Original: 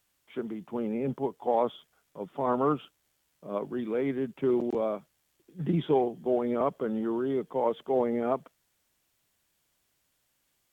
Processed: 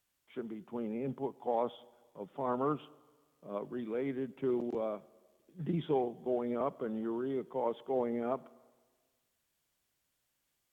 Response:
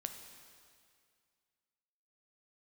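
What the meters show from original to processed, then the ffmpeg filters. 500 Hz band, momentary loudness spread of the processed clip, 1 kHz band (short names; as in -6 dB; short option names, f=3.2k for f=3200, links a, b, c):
-6.5 dB, 10 LU, -6.5 dB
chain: -filter_complex "[0:a]asplit=2[a][b];[1:a]atrim=start_sample=2205,asetrate=61740,aresample=44100[c];[b][c]afir=irnorm=-1:irlink=0,volume=-8.5dB[d];[a][d]amix=inputs=2:normalize=0,volume=-8dB"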